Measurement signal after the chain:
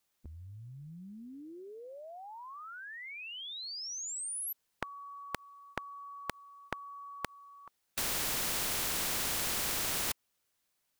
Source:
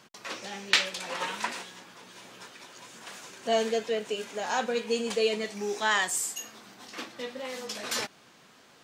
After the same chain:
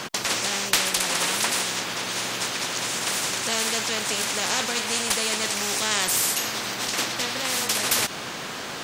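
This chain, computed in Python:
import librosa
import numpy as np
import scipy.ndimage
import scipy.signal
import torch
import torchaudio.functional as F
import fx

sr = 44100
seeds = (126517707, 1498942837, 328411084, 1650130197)

y = fx.spectral_comp(x, sr, ratio=4.0)
y = F.gain(torch.from_numpy(y), 3.0).numpy()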